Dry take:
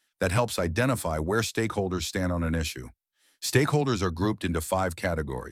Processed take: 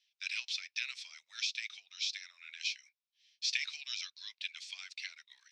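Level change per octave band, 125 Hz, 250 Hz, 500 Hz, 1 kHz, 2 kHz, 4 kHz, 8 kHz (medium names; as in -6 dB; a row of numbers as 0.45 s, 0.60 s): under -40 dB, under -40 dB, under -40 dB, -33.5 dB, -8.0 dB, -0.5 dB, -9.5 dB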